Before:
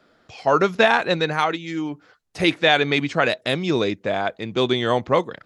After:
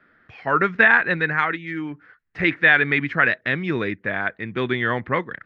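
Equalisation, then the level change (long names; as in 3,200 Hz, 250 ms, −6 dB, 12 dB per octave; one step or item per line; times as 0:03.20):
low-pass with resonance 1,800 Hz, resonance Q 3.6
parametric band 680 Hz −9.5 dB 1.6 octaves
0.0 dB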